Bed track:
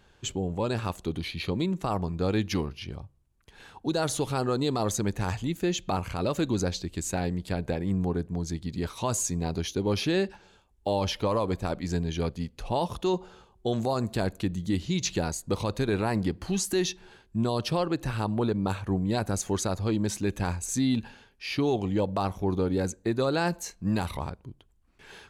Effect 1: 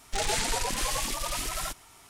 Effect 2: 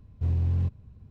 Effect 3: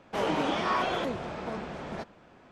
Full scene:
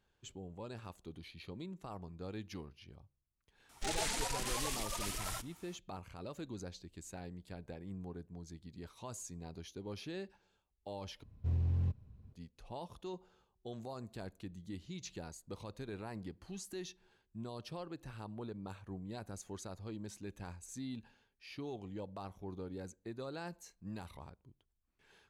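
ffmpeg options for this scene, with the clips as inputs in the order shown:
-filter_complex "[0:a]volume=0.126,asplit=2[s0][s1];[s0]atrim=end=11.234[s2];[2:a]atrim=end=1.1,asetpts=PTS-STARTPTS,volume=0.422[s3];[s1]atrim=start=12.326[s4];[1:a]atrim=end=2.09,asetpts=PTS-STARTPTS,volume=0.376,afade=t=in:d=0.004:c=hsin,afade=t=out:st=2.086:d=0.004:c=hsin,adelay=162729S[s5];[s2][s3]acrossfade=d=0.004:c1=hsin:c2=hsin[s6];[s6][s4]acrossfade=d=0.004:c1=hsin:c2=hsin[s7];[s7][s5]amix=inputs=2:normalize=0"

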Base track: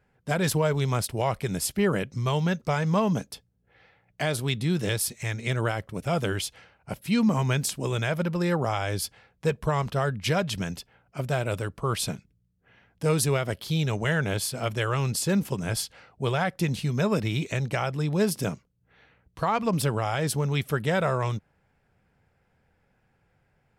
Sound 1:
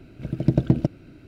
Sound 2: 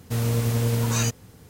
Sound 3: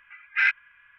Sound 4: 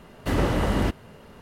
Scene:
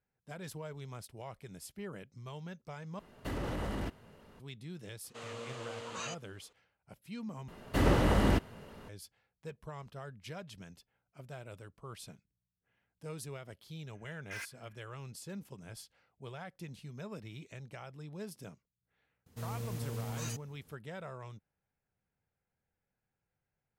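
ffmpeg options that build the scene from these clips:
-filter_complex "[4:a]asplit=2[s0][s1];[2:a]asplit=2[s2][s3];[0:a]volume=0.1[s4];[s0]alimiter=limit=0.119:level=0:latency=1:release=16[s5];[s2]highpass=420,equalizer=f=540:t=q:w=4:g=5,equalizer=f=1200:t=q:w=4:g=8,equalizer=f=2900:t=q:w=4:g=6,equalizer=f=5500:t=q:w=4:g=-7,lowpass=f=7100:w=0.5412,lowpass=f=7100:w=1.3066[s6];[3:a]asoftclip=type=hard:threshold=0.0473[s7];[s4]asplit=3[s8][s9][s10];[s8]atrim=end=2.994[s11];[s5]atrim=end=1.41,asetpts=PTS-STARTPTS,volume=0.299[s12];[s9]atrim=start=4.396:end=7.484[s13];[s1]atrim=end=1.41,asetpts=PTS-STARTPTS,volume=0.668[s14];[s10]atrim=start=8.886[s15];[s6]atrim=end=1.49,asetpts=PTS-STARTPTS,volume=0.211,afade=t=in:d=0.004:c=hsin,afade=t=out:st=1.486:d=0.004:c=hsin,adelay=5040[s16];[s7]atrim=end=0.98,asetpts=PTS-STARTPTS,volume=0.178,afade=t=in:d=0.004:c=hsin,afade=t=out:st=0.976:d=0.004:c=hsin,adelay=13940[s17];[s3]atrim=end=1.49,asetpts=PTS-STARTPTS,volume=0.15,afade=t=in:d=0.004:c=hsin,afade=t=out:st=1.486:d=0.004:c=hsin,adelay=19260[s18];[s11][s12]acrossfade=d=0.004:c1=hsin:c2=hsin[s19];[s19][s13]acrossfade=d=0.004:c1=hsin:c2=hsin[s20];[s20][s14]acrossfade=d=0.004:c1=hsin:c2=hsin[s21];[s21][s15]acrossfade=d=0.004:c1=hsin:c2=hsin[s22];[s22][s16][s17][s18]amix=inputs=4:normalize=0"

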